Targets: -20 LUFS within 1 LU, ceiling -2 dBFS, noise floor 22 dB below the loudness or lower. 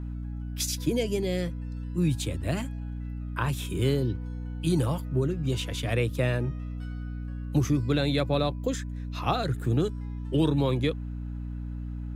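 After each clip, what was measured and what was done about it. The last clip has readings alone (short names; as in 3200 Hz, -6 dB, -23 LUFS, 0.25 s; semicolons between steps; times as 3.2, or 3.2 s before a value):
hum 60 Hz; harmonics up to 300 Hz; hum level -32 dBFS; loudness -29.0 LUFS; peak -12.0 dBFS; loudness target -20.0 LUFS
-> notches 60/120/180/240/300 Hz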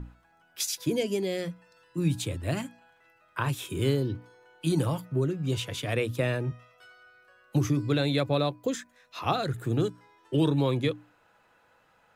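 hum none; loudness -29.5 LUFS; peak -12.5 dBFS; loudness target -20.0 LUFS
-> gain +9.5 dB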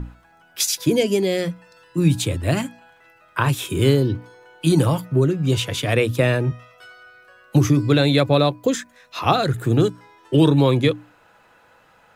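loudness -20.0 LUFS; peak -3.0 dBFS; noise floor -55 dBFS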